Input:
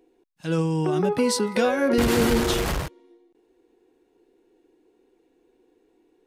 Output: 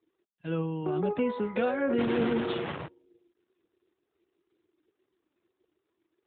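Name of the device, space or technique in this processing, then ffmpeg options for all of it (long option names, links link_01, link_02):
mobile call with aggressive noise cancelling: -af "highpass=120,afftdn=noise_reduction=23:noise_floor=-47,volume=-6dB" -ar 8000 -c:a libopencore_amrnb -b:a 12200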